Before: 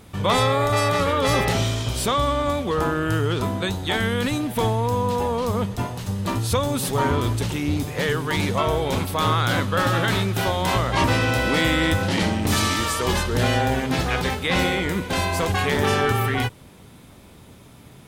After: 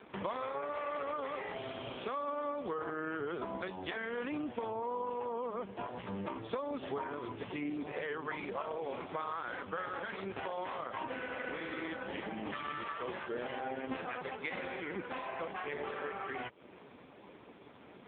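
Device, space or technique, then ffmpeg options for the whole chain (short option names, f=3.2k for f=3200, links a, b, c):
voicemail: -af "highpass=310,lowpass=2.7k,acompressor=threshold=-35dB:ratio=8,volume=1dB" -ar 8000 -c:a libopencore_amrnb -b:a 4750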